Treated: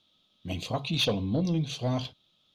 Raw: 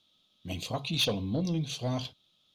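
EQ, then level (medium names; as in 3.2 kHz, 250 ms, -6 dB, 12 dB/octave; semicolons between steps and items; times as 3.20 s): treble shelf 5.5 kHz -8.5 dB; +3.0 dB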